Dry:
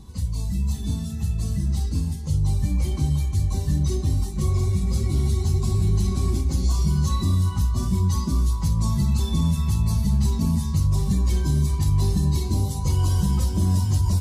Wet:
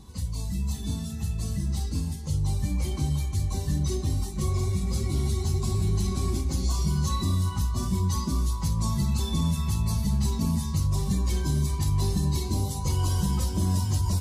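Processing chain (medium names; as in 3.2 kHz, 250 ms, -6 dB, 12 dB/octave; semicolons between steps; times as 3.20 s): bass shelf 250 Hz -5.5 dB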